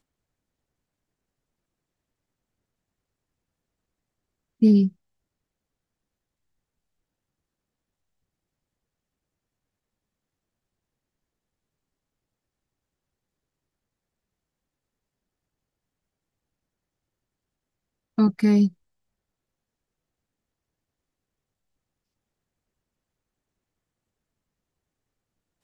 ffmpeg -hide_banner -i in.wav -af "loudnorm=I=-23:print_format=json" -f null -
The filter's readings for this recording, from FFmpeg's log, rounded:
"input_i" : "-20.8",
"input_tp" : "-8.4",
"input_lra" : "0.0",
"input_thresh" : "-31.6",